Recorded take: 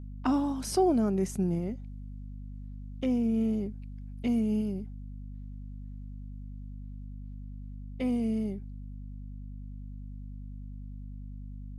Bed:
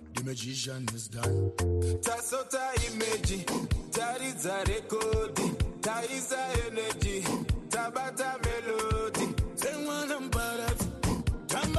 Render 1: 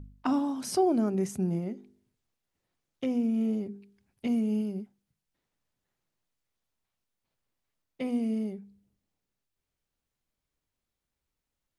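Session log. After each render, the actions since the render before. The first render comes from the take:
hum removal 50 Hz, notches 9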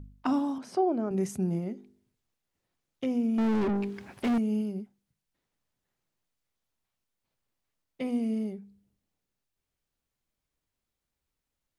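0:00.58–0:01.11: resonant band-pass 710 Hz, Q 0.53
0:03.38–0:04.38: mid-hump overdrive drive 43 dB, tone 1,100 Hz, clips at −20 dBFS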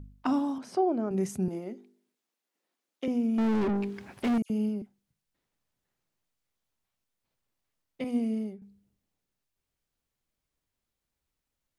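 0:01.48–0:03.08: high-pass filter 240 Hz 24 dB per octave
0:04.42–0:04.82: all-pass dispersion lows, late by 79 ms, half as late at 2,600 Hz
0:08.04–0:08.62: multiband upward and downward expander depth 100%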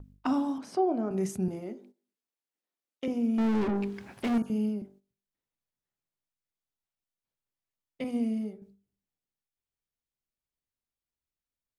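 hum removal 48.88 Hz, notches 36
noise gate −54 dBFS, range −11 dB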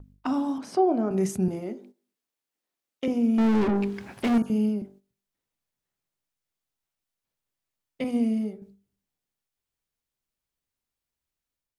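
automatic gain control gain up to 5 dB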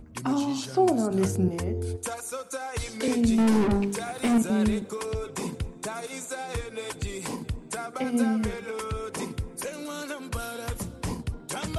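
mix in bed −2.5 dB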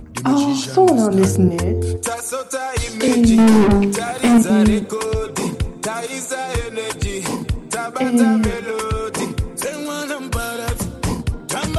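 level +10.5 dB
brickwall limiter −3 dBFS, peak gain reduction 2 dB

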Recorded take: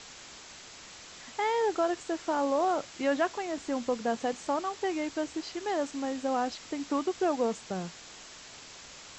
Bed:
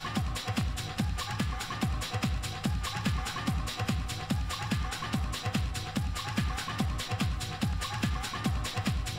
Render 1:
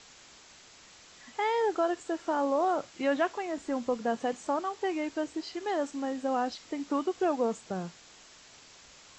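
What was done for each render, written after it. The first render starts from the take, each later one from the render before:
noise reduction from a noise print 6 dB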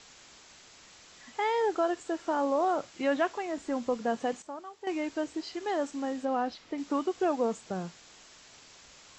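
0:04.42–0:04.87: clip gain −11 dB
0:06.25–0:06.78: high-frequency loss of the air 120 metres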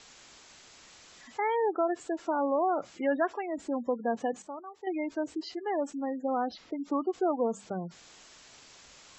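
mains-hum notches 50/100/150/200 Hz
gate on every frequency bin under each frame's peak −20 dB strong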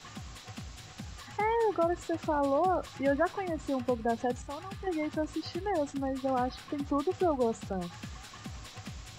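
mix in bed −13 dB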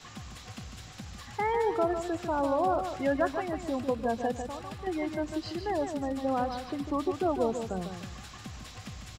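repeating echo 149 ms, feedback 31%, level −7.5 dB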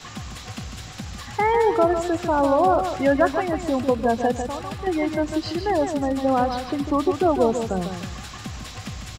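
level +9 dB

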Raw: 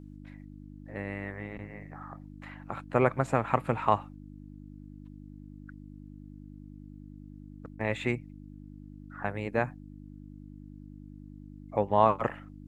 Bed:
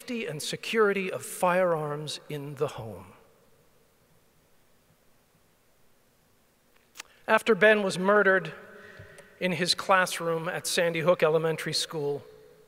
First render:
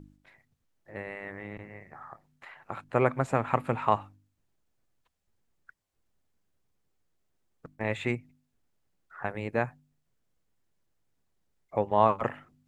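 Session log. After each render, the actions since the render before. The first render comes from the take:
hum removal 50 Hz, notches 6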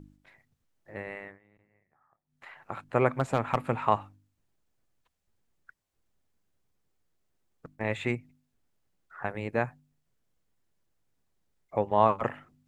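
0:01.17–0:02.47: duck −23.5 dB, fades 0.22 s
0:03.19–0:03.63: hard clipping −13.5 dBFS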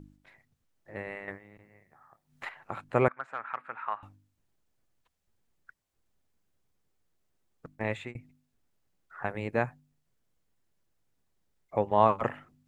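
0:01.28–0:02.49: clip gain +10 dB
0:03.08–0:04.03: resonant band-pass 1,500 Hz, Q 3
0:07.75–0:08.15: fade out equal-power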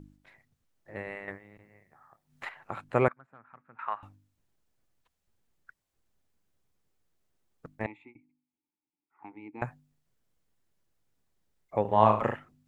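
0:03.13–0:03.79: drawn EQ curve 200 Hz 0 dB, 500 Hz −14 dB, 3,100 Hz −23 dB
0:07.86–0:09.62: formant filter u
0:11.81–0:12.36: flutter between parallel walls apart 6.4 metres, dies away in 0.38 s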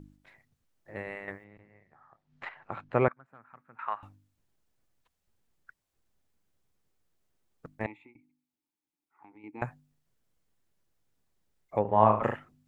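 0:01.44–0:03.26: high-frequency loss of the air 150 metres
0:08.06–0:09.44: downward compressor 3 to 1, threshold −52 dBFS
0:11.79–0:12.23: low-pass filter 1,900 Hz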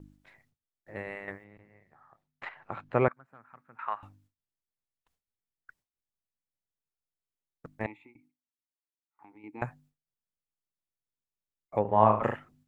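noise gate with hold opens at −57 dBFS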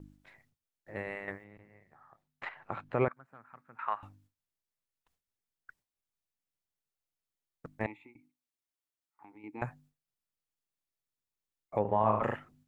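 brickwall limiter −16 dBFS, peak gain reduction 10.5 dB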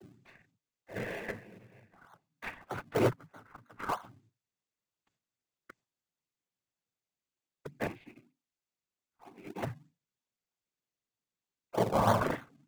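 cochlear-implant simulation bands 16
in parallel at −7 dB: sample-and-hold swept by an LFO 33×, swing 100% 3.2 Hz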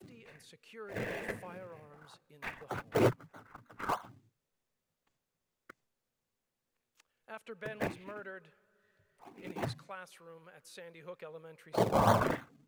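mix in bed −24.5 dB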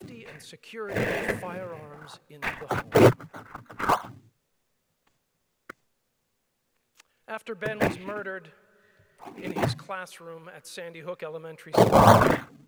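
level +11 dB

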